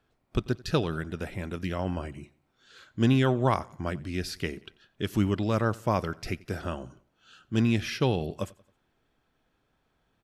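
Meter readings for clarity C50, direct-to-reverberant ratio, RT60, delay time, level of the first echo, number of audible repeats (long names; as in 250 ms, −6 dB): no reverb audible, no reverb audible, no reverb audible, 90 ms, −23.0 dB, 2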